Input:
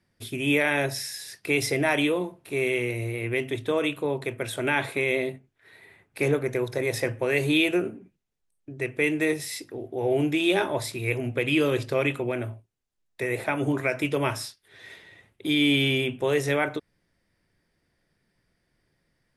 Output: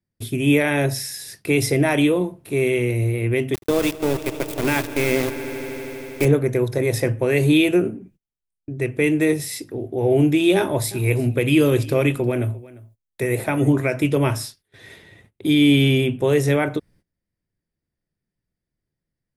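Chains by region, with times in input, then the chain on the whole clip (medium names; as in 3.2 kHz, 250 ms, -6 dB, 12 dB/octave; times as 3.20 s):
3.54–6.25 s: small samples zeroed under -26.5 dBFS + echo with a slow build-up 80 ms, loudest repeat 5, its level -18 dB
10.56–13.70 s: treble shelf 10 kHz +9 dB + delay 349 ms -20.5 dB
whole clip: bass shelf 430 Hz +12 dB; gate -50 dBFS, range -20 dB; treble shelf 7.4 kHz +9 dB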